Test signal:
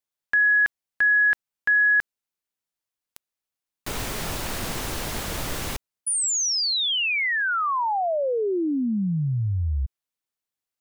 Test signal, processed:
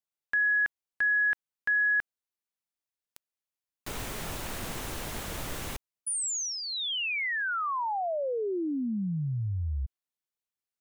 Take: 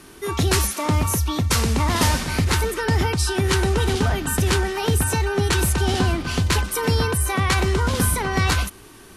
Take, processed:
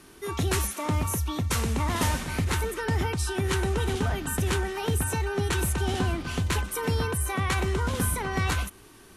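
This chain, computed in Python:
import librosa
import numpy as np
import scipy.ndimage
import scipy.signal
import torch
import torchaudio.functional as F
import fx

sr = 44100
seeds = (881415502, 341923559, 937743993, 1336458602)

y = fx.dynamic_eq(x, sr, hz=4800.0, q=2.4, threshold_db=-41.0, ratio=4.0, max_db=-6)
y = y * librosa.db_to_amplitude(-6.5)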